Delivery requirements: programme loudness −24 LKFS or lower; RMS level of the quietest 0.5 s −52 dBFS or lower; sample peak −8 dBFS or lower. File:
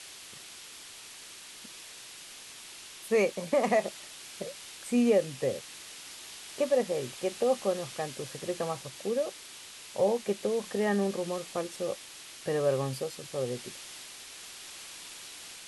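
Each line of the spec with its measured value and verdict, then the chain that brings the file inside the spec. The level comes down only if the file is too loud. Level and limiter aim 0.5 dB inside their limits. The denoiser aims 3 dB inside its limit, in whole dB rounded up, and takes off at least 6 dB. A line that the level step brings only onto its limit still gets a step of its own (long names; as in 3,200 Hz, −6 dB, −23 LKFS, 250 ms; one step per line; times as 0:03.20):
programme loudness −31.5 LKFS: in spec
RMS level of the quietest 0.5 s −48 dBFS: out of spec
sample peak −14.5 dBFS: in spec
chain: broadband denoise 7 dB, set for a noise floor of −48 dBFS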